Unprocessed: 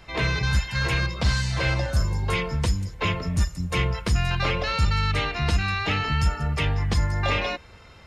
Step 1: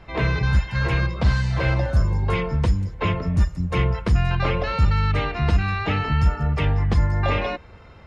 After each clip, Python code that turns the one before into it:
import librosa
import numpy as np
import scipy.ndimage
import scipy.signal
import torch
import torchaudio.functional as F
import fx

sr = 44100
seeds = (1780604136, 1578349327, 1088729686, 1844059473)

y = fx.lowpass(x, sr, hz=1300.0, slope=6)
y = F.gain(torch.from_numpy(y), 4.0).numpy()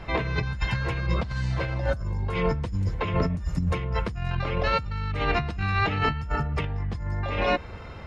y = fx.over_compress(x, sr, threshold_db=-27.0, ratio=-1.0)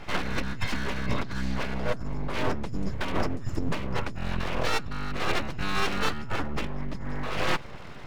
y = np.abs(x)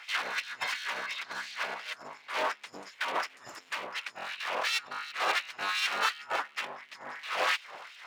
y = fx.filter_lfo_highpass(x, sr, shape='sine', hz=2.8, low_hz=630.0, high_hz=2900.0, q=1.4)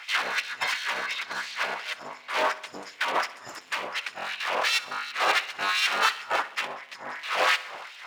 y = fx.echo_feedback(x, sr, ms=64, feedback_pct=59, wet_db=-18.0)
y = F.gain(torch.from_numpy(y), 5.5).numpy()